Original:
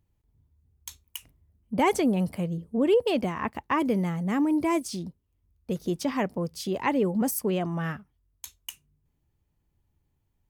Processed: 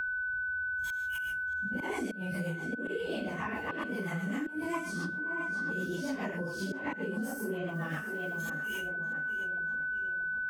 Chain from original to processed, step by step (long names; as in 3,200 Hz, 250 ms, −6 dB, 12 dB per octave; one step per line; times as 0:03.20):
random phases in long frames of 200 ms
noise gate −59 dBFS, range −10 dB
all-pass dispersion highs, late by 56 ms, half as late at 480 Hz
volume swells 310 ms
0:01.02–0:01.75: double-tracking delay 15 ms −3 dB
tape delay 628 ms, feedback 48%, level −15 dB, low-pass 2,300 Hz
rotating-speaker cabinet horn 7.5 Hz
downward compressor 2 to 1, threshold −35 dBFS, peak gain reduction 8 dB
steady tone 1,500 Hz −41 dBFS
0:04.74–0:05.86: parametric band 1,200 Hz +13 dB 0.49 octaves
0:07.68–0:08.58: floating-point word with a short mantissa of 4 bits
multiband upward and downward compressor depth 100%